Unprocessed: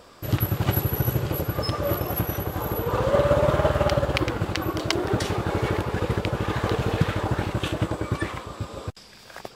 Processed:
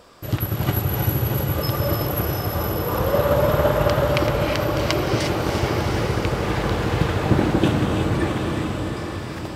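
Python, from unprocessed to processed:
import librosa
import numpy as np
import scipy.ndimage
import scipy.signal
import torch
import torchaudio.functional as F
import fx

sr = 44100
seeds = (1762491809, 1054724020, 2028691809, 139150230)

p1 = fx.peak_eq(x, sr, hz=270.0, db=13.0, octaves=1.7, at=(7.3, 7.7))
p2 = p1 + fx.echo_diffused(p1, sr, ms=760, feedback_pct=46, wet_db=-5.0, dry=0)
y = fx.rev_gated(p2, sr, seeds[0], gate_ms=380, shape='rising', drr_db=2.0)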